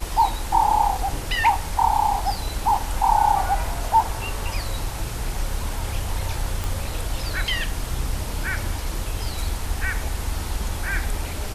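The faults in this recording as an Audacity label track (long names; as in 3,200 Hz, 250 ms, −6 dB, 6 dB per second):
6.640000	6.640000	click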